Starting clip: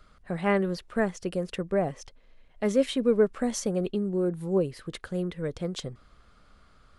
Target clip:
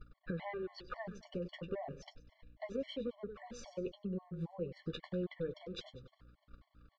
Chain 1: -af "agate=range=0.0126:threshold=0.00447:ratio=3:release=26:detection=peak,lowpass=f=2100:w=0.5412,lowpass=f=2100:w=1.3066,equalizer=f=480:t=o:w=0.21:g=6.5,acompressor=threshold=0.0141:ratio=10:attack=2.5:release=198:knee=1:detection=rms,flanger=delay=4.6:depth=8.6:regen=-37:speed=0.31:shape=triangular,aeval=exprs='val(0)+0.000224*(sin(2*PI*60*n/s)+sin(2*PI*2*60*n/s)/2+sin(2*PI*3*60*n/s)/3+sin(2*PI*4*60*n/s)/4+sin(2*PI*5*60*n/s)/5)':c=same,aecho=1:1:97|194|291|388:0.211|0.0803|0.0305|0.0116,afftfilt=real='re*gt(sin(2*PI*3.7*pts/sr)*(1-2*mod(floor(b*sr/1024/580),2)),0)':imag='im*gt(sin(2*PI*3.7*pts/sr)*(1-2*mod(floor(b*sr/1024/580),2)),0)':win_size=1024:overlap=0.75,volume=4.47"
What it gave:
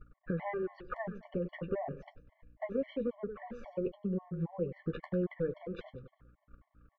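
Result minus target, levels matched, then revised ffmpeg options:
4 kHz band -15.0 dB; compression: peak gain reduction -5.5 dB
-af "agate=range=0.0126:threshold=0.00447:ratio=3:release=26:detection=peak,lowpass=f=4500:w=0.5412,lowpass=f=4500:w=1.3066,equalizer=f=480:t=o:w=0.21:g=6.5,acompressor=threshold=0.00708:ratio=10:attack=2.5:release=198:knee=1:detection=rms,flanger=delay=4.6:depth=8.6:regen=-37:speed=0.31:shape=triangular,aeval=exprs='val(0)+0.000224*(sin(2*PI*60*n/s)+sin(2*PI*2*60*n/s)/2+sin(2*PI*3*60*n/s)/3+sin(2*PI*4*60*n/s)/4+sin(2*PI*5*60*n/s)/5)':c=same,aecho=1:1:97|194|291|388:0.211|0.0803|0.0305|0.0116,afftfilt=real='re*gt(sin(2*PI*3.7*pts/sr)*(1-2*mod(floor(b*sr/1024/580),2)),0)':imag='im*gt(sin(2*PI*3.7*pts/sr)*(1-2*mod(floor(b*sr/1024/580),2)),0)':win_size=1024:overlap=0.75,volume=4.47"

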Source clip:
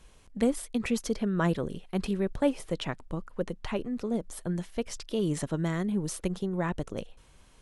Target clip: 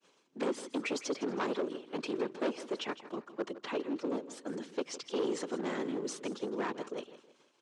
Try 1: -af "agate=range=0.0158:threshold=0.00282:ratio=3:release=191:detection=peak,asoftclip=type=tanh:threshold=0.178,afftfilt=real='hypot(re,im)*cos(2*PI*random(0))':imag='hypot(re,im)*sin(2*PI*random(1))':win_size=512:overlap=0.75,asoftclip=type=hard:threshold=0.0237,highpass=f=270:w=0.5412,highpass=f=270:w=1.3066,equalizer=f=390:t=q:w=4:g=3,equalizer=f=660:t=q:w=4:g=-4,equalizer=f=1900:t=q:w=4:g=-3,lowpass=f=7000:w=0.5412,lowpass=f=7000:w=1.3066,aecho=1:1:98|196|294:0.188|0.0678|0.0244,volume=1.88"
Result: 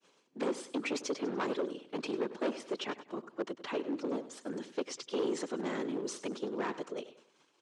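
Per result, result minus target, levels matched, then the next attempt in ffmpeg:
saturation: distortion +12 dB; echo 62 ms early
-af "agate=range=0.0158:threshold=0.00282:ratio=3:release=191:detection=peak,asoftclip=type=tanh:threshold=0.398,afftfilt=real='hypot(re,im)*cos(2*PI*random(0))':imag='hypot(re,im)*sin(2*PI*random(1))':win_size=512:overlap=0.75,asoftclip=type=hard:threshold=0.0237,highpass=f=270:w=0.5412,highpass=f=270:w=1.3066,equalizer=f=390:t=q:w=4:g=3,equalizer=f=660:t=q:w=4:g=-4,equalizer=f=1900:t=q:w=4:g=-3,lowpass=f=7000:w=0.5412,lowpass=f=7000:w=1.3066,aecho=1:1:98|196|294:0.188|0.0678|0.0244,volume=1.88"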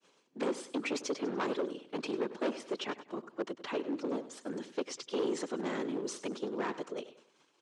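echo 62 ms early
-af "agate=range=0.0158:threshold=0.00282:ratio=3:release=191:detection=peak,asoftclip=type=tanh:threshold=0.398,afftfilt=real='hypot(re,im)*cos(2*PI*random(0))':imag='hypot(re,im)*sin(2*PI*random(1))':win_size=512:overlap=0.75,asoftclip=type=hard:threshold=0.0237,highpass=f=270:w=0.5412,highpass=f=270:w=1.3066,equalizer=f=390:t=q:w=4:g=3,equalizer=f=660:t=q:w=4:g=-4,equalizer=f=1900:t=q:w=4:g=-3,lowpass=f=7000:w=0.5412,lowpass=f=7000:w=1.3066,aecho=1:1:160|320|480:0.188|0.0678|0.0244,volume=1.88"

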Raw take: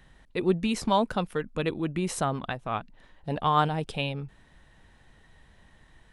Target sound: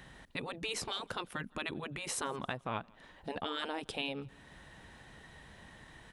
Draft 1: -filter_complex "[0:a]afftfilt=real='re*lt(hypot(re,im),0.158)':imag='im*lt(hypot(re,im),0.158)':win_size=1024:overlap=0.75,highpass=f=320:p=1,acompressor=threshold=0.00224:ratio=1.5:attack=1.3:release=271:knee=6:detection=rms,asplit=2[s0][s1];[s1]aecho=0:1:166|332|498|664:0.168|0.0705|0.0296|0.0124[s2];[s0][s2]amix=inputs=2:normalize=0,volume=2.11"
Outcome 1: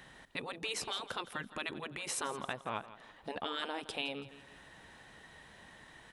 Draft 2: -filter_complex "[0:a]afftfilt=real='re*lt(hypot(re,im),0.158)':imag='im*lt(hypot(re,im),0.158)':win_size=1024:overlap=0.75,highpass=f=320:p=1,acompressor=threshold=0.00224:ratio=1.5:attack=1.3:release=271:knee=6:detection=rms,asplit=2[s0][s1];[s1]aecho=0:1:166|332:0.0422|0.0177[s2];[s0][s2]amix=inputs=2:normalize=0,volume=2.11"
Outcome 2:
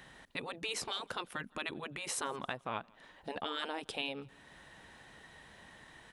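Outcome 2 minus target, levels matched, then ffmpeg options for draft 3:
125 Hz band -5.0 dB
-filter_complex "[0:a]afftfilt=real='re*lt(hypot(re,im),0.158)':imag='im*lt(hypot(re,im),0.158)':win_size=1024:overlap=0.75,highpass=f=110:p=1,acompressor=threshold=0.00224:ratio=1.5:attack=1.3:release=271:knee=6:detection=rms,asplit=2[s0][s1];[s1]aecho=0:1:166|332:0.0422|0.0177[s2];[s0][s2]amix=inputs=2:normalize=0,volume=2.11"

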